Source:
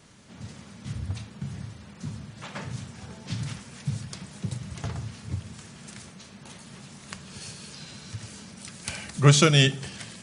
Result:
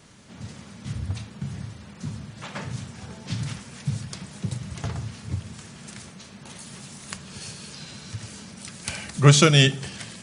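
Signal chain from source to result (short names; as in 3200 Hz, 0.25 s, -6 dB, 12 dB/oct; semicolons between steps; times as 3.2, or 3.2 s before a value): 6.55–7.16 high shelf 4900 Hz -> 8300 Hz +9 dB; gain +2.5 dB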